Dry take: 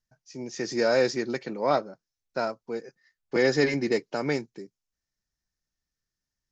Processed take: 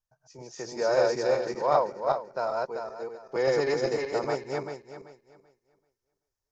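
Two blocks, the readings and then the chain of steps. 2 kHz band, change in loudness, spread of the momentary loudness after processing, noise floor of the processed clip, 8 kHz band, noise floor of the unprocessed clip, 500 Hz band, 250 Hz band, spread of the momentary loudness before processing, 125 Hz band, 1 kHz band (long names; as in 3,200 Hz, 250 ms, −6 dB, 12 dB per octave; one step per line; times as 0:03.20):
−5.0 dB, −1.0 dB, 16 LU, below −85 dBFS, can't be measured, below −85 dBFS, +0.5 dB, −7.5 dB, 17 LU, −4.5 dB, +3.5 dB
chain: feedback delay that plays each chunk backwards 193 ms, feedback 48%, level 0 dB
graphic EQ with 10 bands 250 Hz −12 dB, 500 Hz +3 dB, 1,000 Hz +7 dB, 2,000 Hz −7 dB, 4,000 Hz −4 dB
level −4 dB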